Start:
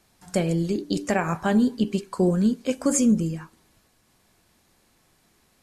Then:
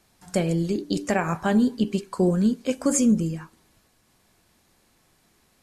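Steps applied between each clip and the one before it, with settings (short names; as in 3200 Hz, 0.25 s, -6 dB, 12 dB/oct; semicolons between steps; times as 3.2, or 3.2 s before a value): nothing audible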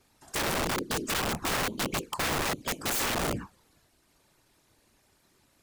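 envelope flanger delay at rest 3.4 ms, full sweep at -21 dBFS; whisperiser; wrapped overs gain 24 dB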